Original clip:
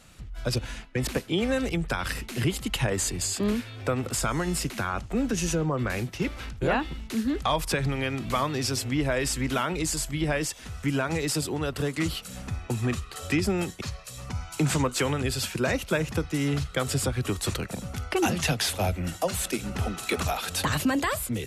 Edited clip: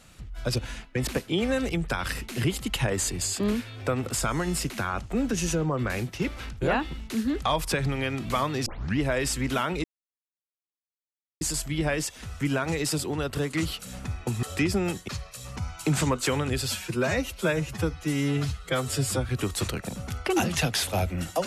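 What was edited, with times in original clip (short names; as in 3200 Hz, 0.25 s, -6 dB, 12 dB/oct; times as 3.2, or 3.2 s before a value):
8.66 tape start 0.33 s
9.84 insert silence 1.57 s
12.86–13.16 cut
15.41–17.15 stretch 1.5×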